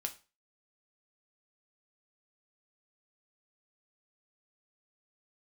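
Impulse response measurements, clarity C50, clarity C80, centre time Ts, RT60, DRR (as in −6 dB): 15.0 dB, 21.0 dB, 8 ms, 0.35 s, 5.0 dB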